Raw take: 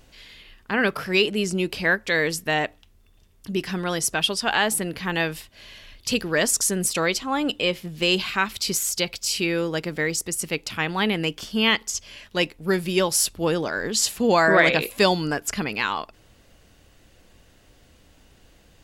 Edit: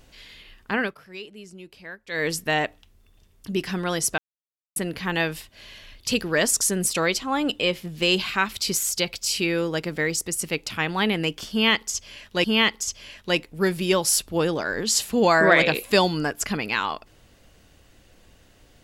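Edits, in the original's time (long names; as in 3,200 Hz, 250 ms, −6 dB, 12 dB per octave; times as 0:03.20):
0:00.73–0:02.29: duck −18.5 dB, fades 0.22 s
0:04.18–0:04.76: silence
0:11.51–0:12.44: repeat, 2 plays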